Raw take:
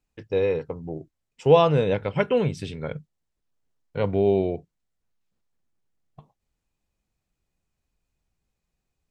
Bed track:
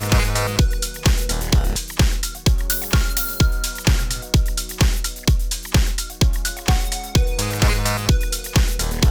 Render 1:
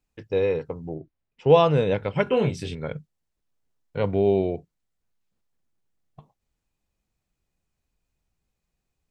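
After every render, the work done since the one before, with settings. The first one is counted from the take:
0:00.94–0:01.50: high-frequency loss of the air 210 metres
0:02.24–0:02.75: double-tracking delay 23 ms −3.5 dB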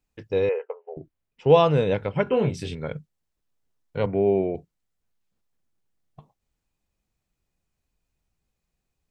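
0:00.49–0:00.97: linear-phase brick-wall band-pass 390–3,100 Hz
0:02.06–0:02.54: high-shelf EQ 3,200 Hz −10 dB
0:04.06–0:04.55: elliptic band-pass filter 110–2,400 Hz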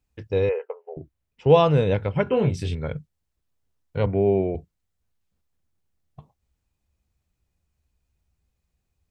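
parametric band 73 Hz +12 dB 1.1 octaves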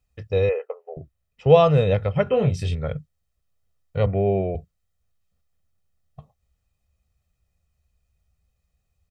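comb filter 1.6 ms, depth 56%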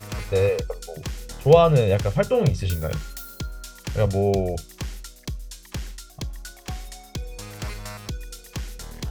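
mix in bed track −15.5 dB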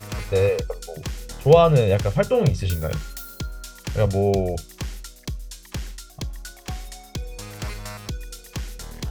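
level +1 dB
brickwall limiter −3 dBFS, peak gain reduction 1 dB

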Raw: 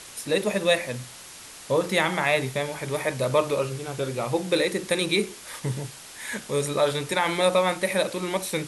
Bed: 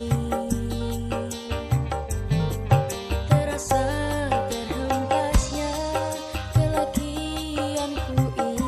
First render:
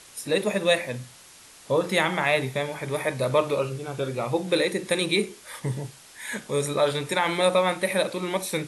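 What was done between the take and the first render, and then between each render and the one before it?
noise reduction from a noise print 6 dB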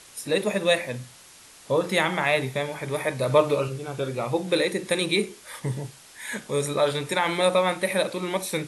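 0:03.27–0:03.68: comb filter 6.7 ms, depth 55%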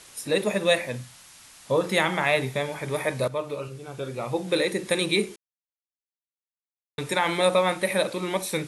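0:01.01–0:01.71: parametric band 410 Hz −8.5 dB 0.95 octaves
0:03.28–0:04.78: fade in, from −13 dB
0:05.36–0:06.98: silence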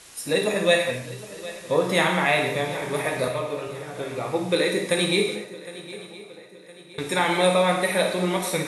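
feedback echo with a long and a short gap by turns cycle 1,014 ms, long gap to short 3 to 1, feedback 41%, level −17 dB
reverb whose tail is shaped and stops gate 270 ms falling, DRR 1 dB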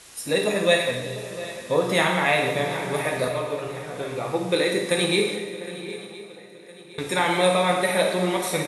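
slap from a distant wall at 120 metres, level −14 dB
four-comb reverb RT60 2.1 s, combs from 31 ms, DRR 10.5 dB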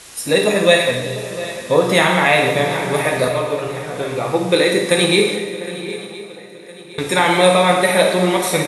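level +7.5 dB
brickwall limiter −1 dBFS, peak gain reduction 2 dB

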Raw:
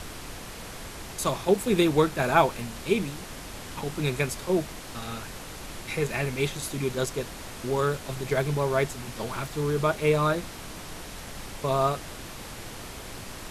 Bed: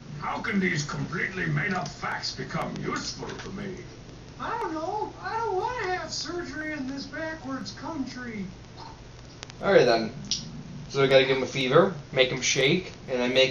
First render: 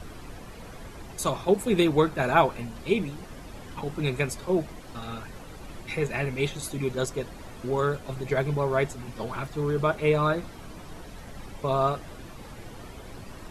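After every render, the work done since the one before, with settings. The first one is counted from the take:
broadband denoise 11 dB, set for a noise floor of −41 dBFS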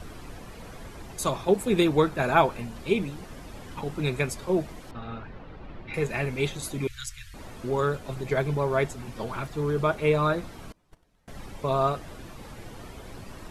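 0:04.91–0:05.94: high-frequency loss of the air 320 metres
0:06.87–0:07.34: inverse Chebyshev band-stop filter 200–800 Hz, stop band 50 dB
0:10.72–0:11.28: noise gate −37 dBFS, range −26 dB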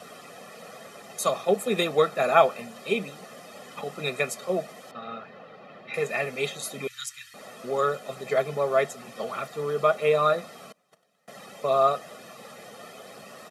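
high-pass filter 210 Hz 24 dB per octave
comb filter 1.6 ms, depth 78%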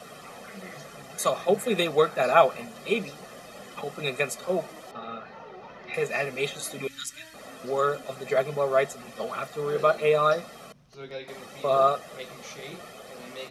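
mix in bed −19.5 dB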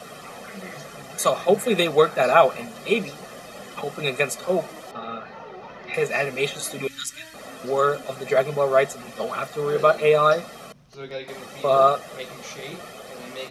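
level +4.5 dB
brickwall limiter −3 dBFS, peak gain reduction 2.5 dB

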